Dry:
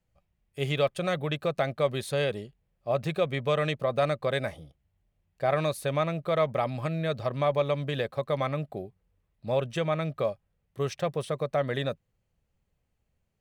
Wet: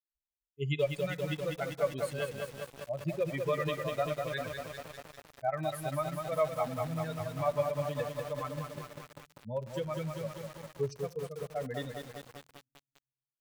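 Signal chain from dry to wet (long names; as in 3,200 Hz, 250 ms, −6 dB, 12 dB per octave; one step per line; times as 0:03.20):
spectral dynamics exaggerated over time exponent 3
parametric band 5,600 Hz −5.5 dB 1.2 octaves
convolution reverb RT60 0.90 s, pre-delay 7 ms, DRR 16 dB
feedback echo at a low word length 197 ms, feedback 80%, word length 8 bits, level −4.5 dB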